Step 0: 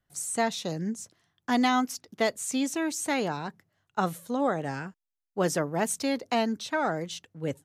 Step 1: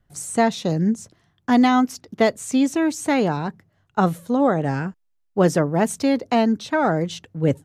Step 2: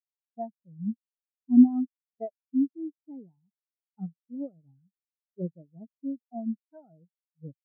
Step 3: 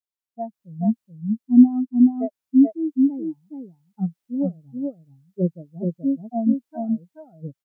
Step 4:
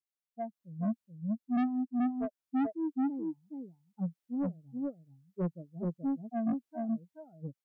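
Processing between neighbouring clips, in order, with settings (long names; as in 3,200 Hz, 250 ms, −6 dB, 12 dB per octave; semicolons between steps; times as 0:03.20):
spectral tilt −2 dB per octave; in parallel at +1 dB: speech leveller within 4 dB 0.5 s
every bin expanded away from the loudest bin 4 to 1; level −1.5 dB
automatic gain control gain up to 13.5 dB; single-tap delay 429 ms −3.5 dB; level −2 dB
soft clipping −19.5 dBFS, distortion −5 dB; level −7 dB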